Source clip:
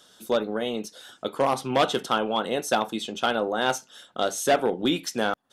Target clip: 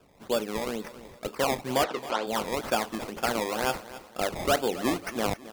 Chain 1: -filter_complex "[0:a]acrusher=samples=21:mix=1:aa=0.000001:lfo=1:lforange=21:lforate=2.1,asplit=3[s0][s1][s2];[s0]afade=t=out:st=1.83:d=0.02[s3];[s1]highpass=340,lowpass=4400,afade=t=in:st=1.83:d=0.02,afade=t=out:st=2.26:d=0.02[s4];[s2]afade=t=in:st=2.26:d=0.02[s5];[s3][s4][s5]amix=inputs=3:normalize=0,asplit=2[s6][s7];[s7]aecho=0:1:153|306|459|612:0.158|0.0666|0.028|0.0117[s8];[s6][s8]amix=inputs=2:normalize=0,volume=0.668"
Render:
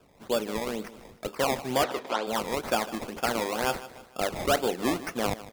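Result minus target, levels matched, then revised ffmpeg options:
echo 117 ms early
-filter_complex "[0:a]acrusher=samples=21:mix=1:aa=0.000001:lfo=1:lforange=21:lforate=2.1,asplit=3[s0][s1][s2];[s0]afade=t=out:st=1.83:d=0.02[s3];[s1]highpass=340,lowpass=4400,afade=t=in:st=1.83:d=0.02,afade=t=out:st=2.26:d=0.02[s4];[s2]afade=t=in:st=2.26:d=0.02[s5];[s3][s4][s5]amix=inputs=3:normalize=0,asplit=2[s6][s7];[s7]aecho=0:1:270|540|810|1080:0.158|0.0666|0.028|0.0117[s8];[s6][s8]amix=inputs=2:normalize=0,volume=0.668"

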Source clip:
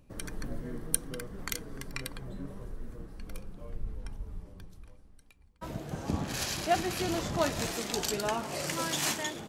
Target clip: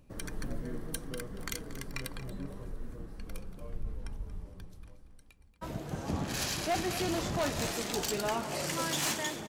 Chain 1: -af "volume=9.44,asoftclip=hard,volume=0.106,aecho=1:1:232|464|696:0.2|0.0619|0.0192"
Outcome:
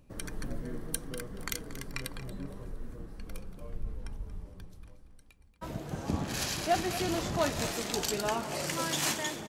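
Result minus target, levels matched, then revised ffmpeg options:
overload inside the chain: distortion -6 dB
-af "volume=21.1,asoftclip=hard,volume=0.0473,aecho=1:1:232|464|696:0.2|0.0619|0.0192"

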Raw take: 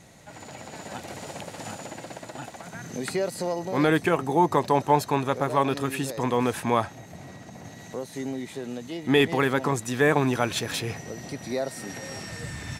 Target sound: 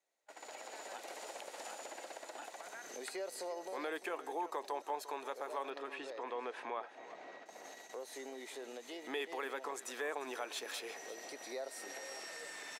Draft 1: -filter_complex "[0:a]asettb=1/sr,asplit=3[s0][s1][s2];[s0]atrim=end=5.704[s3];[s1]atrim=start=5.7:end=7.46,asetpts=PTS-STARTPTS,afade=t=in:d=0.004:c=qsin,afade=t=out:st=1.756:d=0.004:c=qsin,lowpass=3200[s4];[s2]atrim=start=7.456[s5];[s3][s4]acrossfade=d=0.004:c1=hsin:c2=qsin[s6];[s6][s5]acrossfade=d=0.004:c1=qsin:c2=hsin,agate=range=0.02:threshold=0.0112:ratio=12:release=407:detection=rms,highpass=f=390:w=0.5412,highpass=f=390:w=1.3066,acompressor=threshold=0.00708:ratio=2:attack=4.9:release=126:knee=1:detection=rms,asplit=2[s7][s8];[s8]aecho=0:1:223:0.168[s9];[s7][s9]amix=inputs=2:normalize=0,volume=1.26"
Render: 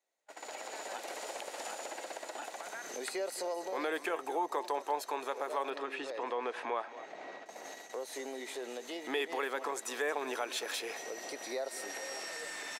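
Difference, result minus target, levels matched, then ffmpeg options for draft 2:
echo 127 ms early; compression: peak gain reduction -5.5 dB
-filter_complex "[0:a]asettb=1/sr,asplit=3[s0][s1][s2];[s0]atrim=end=5.704[s3];[s1]atrim=start=5.7:end=7.46,asetpts=PTS-STARTPTS,afade=t=in:d=0.004:c=qsin,afade=t=out:st=1.756:d=0.004:c=qsin,lowpass=3200[s4];[s2]atrim=start=7.456[s5];[s3][s4]acrossfade=d=0.004:c1=hsin:c2=qsin[s6];[s6][s5]acrossfade=d=0.004:c1=qsin:c2=hsin,agate=range=0.02:threshold=0.0112:ratio=12:release=407:detection=rms,highpass=f=390:w=0.5412,highpass=f=390:w=1.3066,acompressor=threshold=0.002:ratio=2:attack=4.9:release=126:knee=1:detection=rms,asplit=2[s7][s8];[s8]aecho=0:1:350:0.168[s9];[s7][s9]amix=inputs=2:normalize=0,volume=1.26"

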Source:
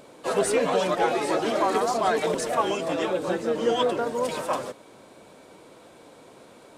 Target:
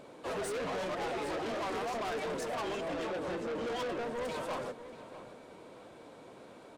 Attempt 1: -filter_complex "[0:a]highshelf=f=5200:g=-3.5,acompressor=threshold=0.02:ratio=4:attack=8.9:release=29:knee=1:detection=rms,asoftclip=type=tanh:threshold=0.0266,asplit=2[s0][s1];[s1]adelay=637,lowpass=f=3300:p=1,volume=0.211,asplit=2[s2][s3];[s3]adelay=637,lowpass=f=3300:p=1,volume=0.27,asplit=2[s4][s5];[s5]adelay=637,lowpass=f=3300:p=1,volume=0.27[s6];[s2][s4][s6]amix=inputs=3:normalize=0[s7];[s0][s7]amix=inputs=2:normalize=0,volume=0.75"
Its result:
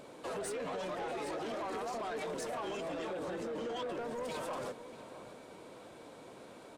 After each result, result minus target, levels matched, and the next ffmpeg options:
compression: peak gain reduction +13.5 dB; 8 kHz band +2.5 dB
-filter_complex "[0:a]highshelf=f=5200:g=-3.5,asoftclip=type=tanh:threshold=0.0266,asplit=2[s0][s1];[s1]adelay=637,lowpass=f=3300:p=1,volume=0.211,asplit=2[s2][s3];[s3]adelay=637,lowpass=f=3300:p=1,volume=0.27,asplit=2[s4][s5];[s5]adelay=637,lowpass=f=3300:p=1,volume=0.27[s6];[s2][s4][s6]amix=inputs=3:normalize=0[s7];[s0][s7]amix=inputs=2:normalize=0,volume=0.75"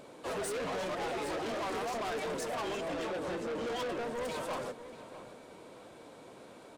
8 kHz band +3.0 dB
-filter_complex "[0:a]highshelf=f=5200:g=-9.5,asoftclip=type=tanh:threshold=0.0266,asplit=2[s0][s1];[s1]adelay=637,lowpass=f=3300:p=1,volume=0.211,asplit=2[s2][s3];[s3]adelay=637,lowpass=f=3300:p=1,volume=0.27,asplit=2[s4][s5];[s5]adelay=637,lowpass=f=3300:p=1,volume=0.27[s6];[s2][s4][s6]amix=inputs=3:normalize=0[s7];[s0][s7]amix=inputs=2:normalize=0,volume=0.75"

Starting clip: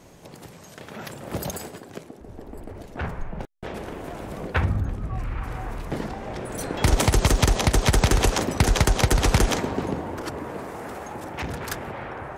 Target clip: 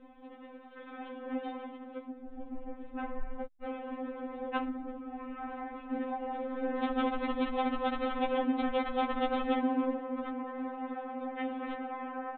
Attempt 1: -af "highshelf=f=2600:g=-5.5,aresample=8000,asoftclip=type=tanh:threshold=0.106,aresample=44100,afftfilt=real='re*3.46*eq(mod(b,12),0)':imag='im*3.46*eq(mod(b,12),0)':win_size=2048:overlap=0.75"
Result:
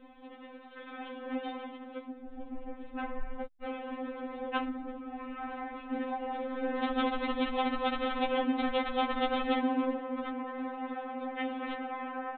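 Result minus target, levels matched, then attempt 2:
4 kHz band +5.0 dB
-af "highshelf=f=2600:g=-16.5,aresample=8000,asoftclip=type=tanh:threshold=0.106,aresample=44100,afftfilt=real='re*3.46*eq(mod(b,12),0)':imag='im*3.46*eq(mod(b,12),0)':win_size=2048:overlap=0.75"

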